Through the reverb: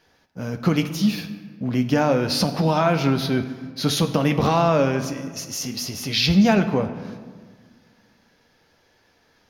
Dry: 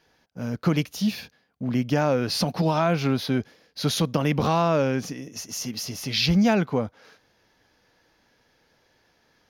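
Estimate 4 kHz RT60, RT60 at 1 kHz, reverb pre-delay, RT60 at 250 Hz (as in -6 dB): 1.0 s, 1.5 s, 9 ms, 2.1 s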